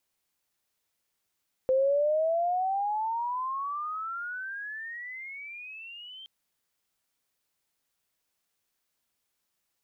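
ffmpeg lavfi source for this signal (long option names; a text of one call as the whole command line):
ffmpeg -f lavfi -i "aevalsrc='pow(10,(-20.5-22*t/4.57)/20)*sin(2*PI*515*4.57/(31.5*log(2)/12)*(exp(31.5*log(2)/12*t/4.57)-1))':duration=4.57:sample_rate=44100" out.wav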